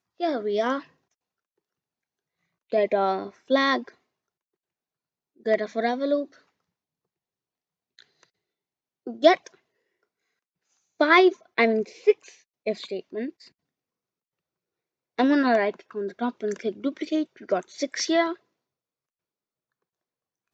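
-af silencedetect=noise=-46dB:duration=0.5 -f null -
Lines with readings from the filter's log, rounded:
silence_start: 0.85
silence_end: 2.72 | silence_duration: 1.87
silence_start: 3.91
silence_end: 5.40 | silence_duration: 1.49
silence_start: 6.37
silence_end: 7.99 | silence_duration: 1.62
silence_start: 8.23
silence_end: 9.07 | silence_duration: 0.83
silence_start: 9.55
silence_end: 11.00 | silence_duration: 1.45
silence_start: 13.48
silence_end: 15.18 | silence_duration: 1.70
silence_start: 18.36
silence_end: 20.53 | silence_duration: 2.18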